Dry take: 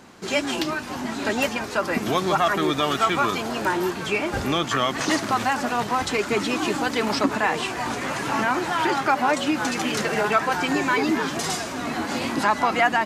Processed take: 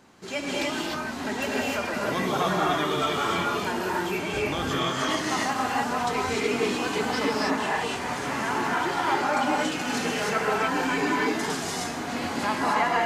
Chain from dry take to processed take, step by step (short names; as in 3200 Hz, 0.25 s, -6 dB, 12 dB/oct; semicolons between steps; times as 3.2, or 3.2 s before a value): non-linear reverb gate 0.33 s rising, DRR -4.5 dB; gain -8.5 dB